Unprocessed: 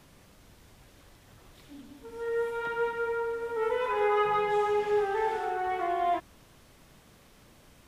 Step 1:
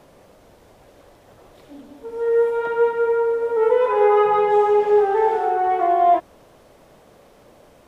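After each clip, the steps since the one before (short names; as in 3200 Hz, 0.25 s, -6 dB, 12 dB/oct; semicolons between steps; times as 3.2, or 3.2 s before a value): bell 570 Hz +14.5 dB 1.8 oct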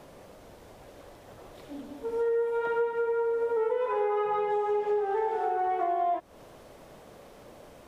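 compressor 6:1, threshold -26 dBFS, peak gain reduction 13.5 dB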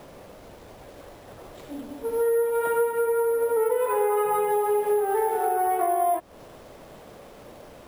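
careless resampling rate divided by 4×, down none, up hold; gain +4.5 dB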